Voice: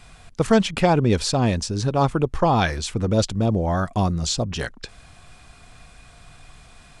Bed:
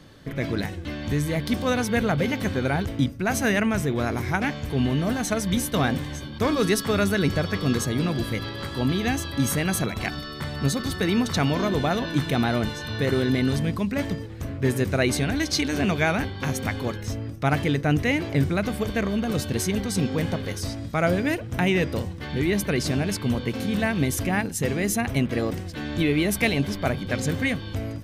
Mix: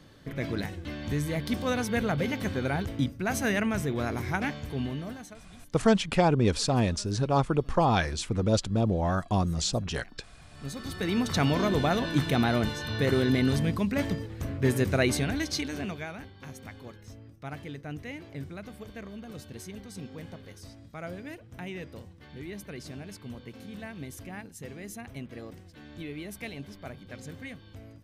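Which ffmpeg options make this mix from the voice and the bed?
ffmpeg -i stem1.wav -i stem2.wav -filter_complex "[0:a]adelay=5350,volume=-5dB[link_01];[1:a]volume=22dB,afade=type=out:start_time=4.46:duration=0.94:silence=0.0630957,afade=type=in:start_time=10.48:duration=0.99:silence=0.0446684,afade=type=out:start_time=14.95:duration=1.13:silence=0.177828[link_02];[link_01][link_02]amix=inputs=2:normalize=0" out.wav

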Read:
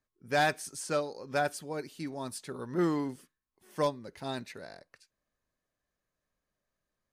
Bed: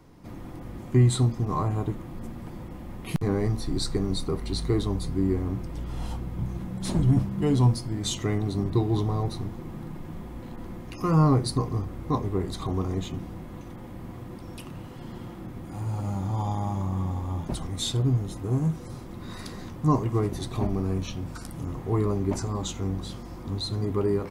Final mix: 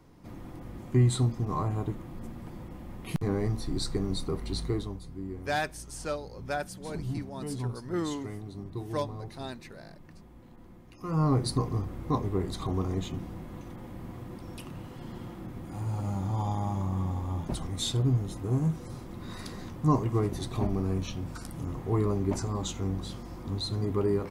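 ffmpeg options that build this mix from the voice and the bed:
ffmpeg -i stem1.wav -i stem2.wav -filter_complex "[0:a]adelay=5150,volume=-3dB[link_01];[1:a]volume=8dB,afade=type=out:start_time=4.59:duration=0.41:silence=0.316228,afade=type=in:start_time=11:duration=0.46:silence=0.266073[link_02];[link_01][link_02]amix=inputs=2:normalize=0" out.wav

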